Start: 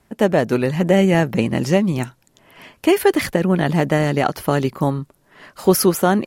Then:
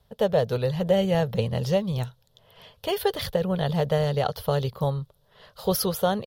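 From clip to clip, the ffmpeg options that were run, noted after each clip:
-af "firequalizer=gain_entry='entry(110,0);entry(310,-25);entry(460,-1);entry(710,-7);entry(1300,-10);entry(2300,-16);entry(3400,2);entry(7300,-15);entry(15000,-2)':delay=0.05:min_phase=1"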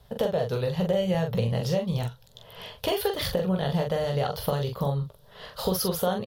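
-filter_complex "[0:a]acompressor=threshold=-33dB:ratio=4,asplit=2[a][b];[b]aecho=0:1:17|43:0.316|0.562[c];[a][c]amix=inputs=2:normalize=0,volume=7dB"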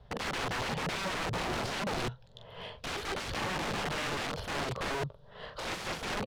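-af "aeval=exprs='(mod(23.7*val(0)+1,2)-1)/23.7':c=same,adynamicsmooth=sensitivity=3:basefreq=3.2k"

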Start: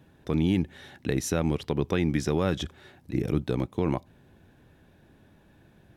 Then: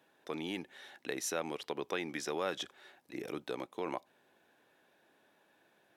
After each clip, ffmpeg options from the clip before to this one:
-af "highpass=520,volume=-4dB"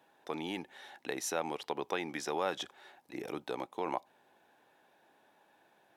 -af "equalizer=f=840:w=2.5:g=7.5"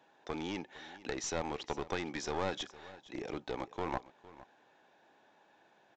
-af "aresample=16000,aeval=exprs='clip(val(0),-1,0.0133)':c=same,aresample=44100,aecho=1:1:459:0.119,volume=1dB"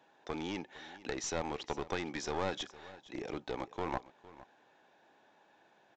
-af anull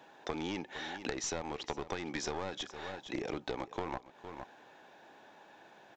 -af "acompressor=threshold=-42dB:ratio=10,volume=8.5dB"

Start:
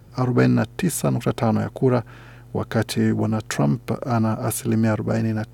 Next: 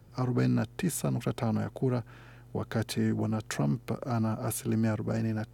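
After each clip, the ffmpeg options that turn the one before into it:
-filter_complex "[0:a]acrossover=split=270|3000[a][b][c];[b]acompressor=threshold=-23dB:ratio=6[d];[a][d][c]amix=inputs=3:normalize=0,volume=-8dB"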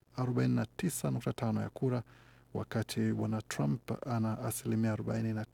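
-af "aeval=exprs='sgn(val(0))*max(abs(val(0))-0.002,0)':c=same,volume=-3.5dB"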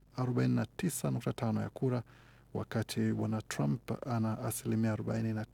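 -af "aeval=exprs='val(0)+0.000794*(sin(2*PI*50*n/s)+sin(2*PI*2*50*n/s)/2+sin(2*PI*3*50*n/s)/3+sin(2*PI*4*50*n/s)/4+sin(2*PI*5*50*n/s)/5)':c=same"

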